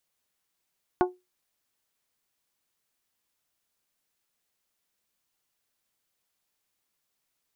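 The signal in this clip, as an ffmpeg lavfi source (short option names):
-f lavfi -i "aevalsrc='0.15*pow(10,-3*t/0.22)*sin(2*PI*363*t)+0.106*pow(10,-3*t/0.135)*sin(2*PI*726*t)+0.075*pow(10,-3*t/0.119)*sin(2*PI*871.2*t)+0.0531*pow(10,-3*t/0.102)*sin(2*PI*1089*t)+0.0376*pow(10,-3*t/0.083)*sin(2*PI*1452*t)':d=0.89:s=44100"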